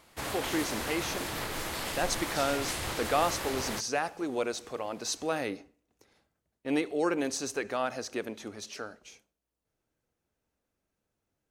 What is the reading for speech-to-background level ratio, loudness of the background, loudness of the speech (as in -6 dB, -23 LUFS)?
1.5 dB, -34.5 LUFS, -33.0 LUFS